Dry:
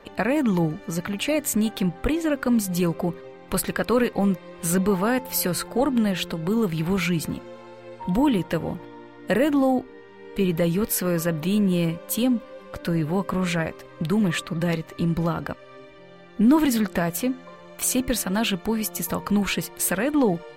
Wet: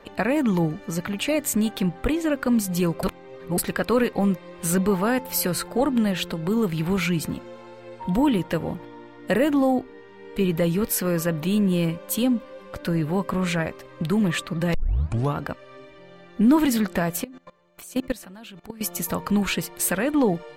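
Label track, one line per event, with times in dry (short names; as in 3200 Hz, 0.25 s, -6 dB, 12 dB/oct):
3.030000	3.580000	reverse
14.740000	14.740000	tape start 0.63 s
17.240000	18.810000	level quantiser steps of 21 dB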